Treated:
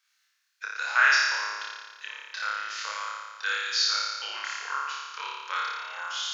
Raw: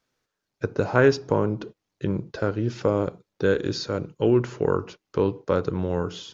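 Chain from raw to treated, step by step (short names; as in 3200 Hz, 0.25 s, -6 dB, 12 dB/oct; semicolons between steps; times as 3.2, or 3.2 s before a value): HPF 1400 Hz 24 dB/oct; on a send: flutter echo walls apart 4.9 m, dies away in 1.4 s; on the sum: gain +4 dB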